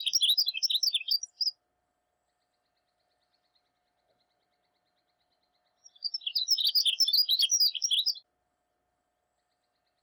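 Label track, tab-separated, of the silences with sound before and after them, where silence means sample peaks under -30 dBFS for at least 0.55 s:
1.490000	6.050000	silence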